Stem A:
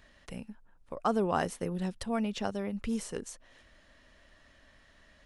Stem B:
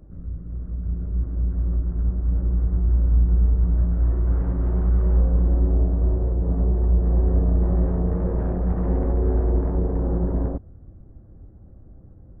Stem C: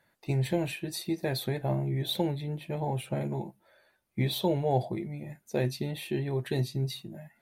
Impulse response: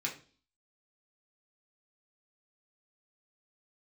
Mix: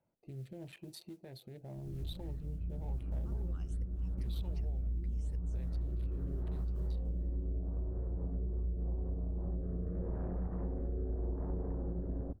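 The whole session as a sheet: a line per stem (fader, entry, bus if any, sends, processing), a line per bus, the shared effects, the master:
−9.5 dB, 2.20 s, bus A, no send, volume swells 362 ms; all-pass phaser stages 8, 2.6 Hz, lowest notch 520–1,100 Hz
−9.5 dB, 1.75 s, no bus, no send, treble cut that deepens with the level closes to 840 Hz, closed at −14 dBFS
−4.0 dB, 0.00 s, bus A, no send, adaptive Wiener filter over 25 samples; downward compressor 3 to 1, threshold −40 dBFS, peak gain reduction 13.5 dB
bus A: 0.0 dB, noise that follows the level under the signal 27 dB; brickwall limiter −37.5 dBFS, peak gain reduction 7.5 dB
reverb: not used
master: rotating-speaker cabinet horn 0.85 Hz; downward compressor, threshold −33 dBFS, peak gain reduction 9.5 dB

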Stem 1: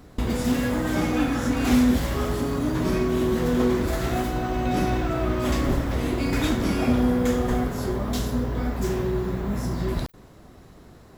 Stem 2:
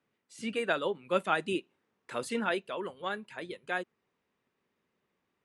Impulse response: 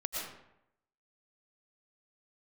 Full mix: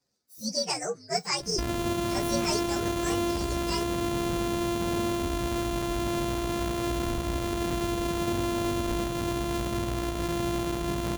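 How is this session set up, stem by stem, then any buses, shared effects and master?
−1.0 dB, 1.40 s, send −15 dB, echo send −8.5 dB, samples sorted by size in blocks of 128 samples; downward compressor, threshold −24 dBFS, peak gain reduction 9.5 dB; soft clipping −23.5 dBFS, distortion −16 dB
+3.0 dB, 0.00 s, no send, no echo send, partials spread apart or drawn together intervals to 130%; high shelf with overshoot 4,000 Hz +7 dB, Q 3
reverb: on, RT60 0.80 s, pre-delay 75 ms
echo: single-tap delay 110 ms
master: no processing

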